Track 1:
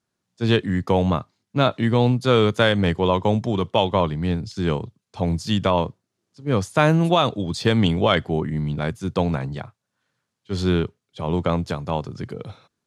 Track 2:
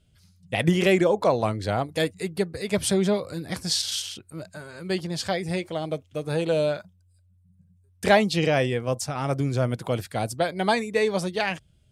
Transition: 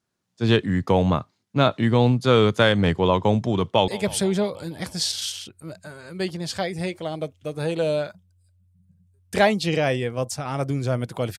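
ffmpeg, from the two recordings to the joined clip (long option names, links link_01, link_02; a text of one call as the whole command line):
ffmpeg -i cue0.wav -i cue1.wav -filter_complex "[0:a]apad=whole_dur=11.38,atrim=end=11.38,atrim=end=3.882[link_01];[1:a]atrim=start=2.578:end=10.08[link_02];[link_01][link_02]acrossfade=duration=0.004:curve1=hsin:curve2=hsin,asplit=2[link_03][link_04];[link_04]afade=type=in:start_time=3.63:duration=0.01,afade=type=out:start_time=3.88:duration=0.01,aecho=0:1:160|320|480|640|800|960|1120|1280:0.133352|0.0933465|0.0653426|0.0457398|0.0320178|0.0224125|0.0156887|0.0109821[link_05];[link_03][link_05]amix=inputs=2:normalize=0" out.wav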